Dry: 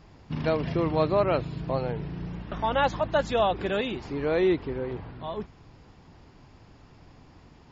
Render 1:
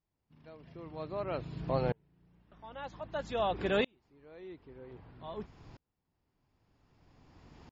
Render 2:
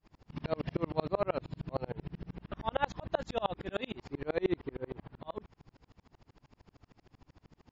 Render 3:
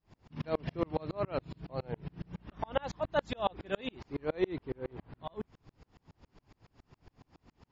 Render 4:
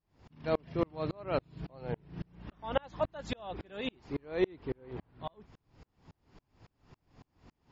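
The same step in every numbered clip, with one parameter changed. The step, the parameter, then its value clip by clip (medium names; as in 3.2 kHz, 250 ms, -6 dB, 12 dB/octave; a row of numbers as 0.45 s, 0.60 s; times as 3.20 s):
sawtooth tremolo in dB, rate: 0.52 Hz, 13 Hz, 7.2 Hz, 3.6 Hz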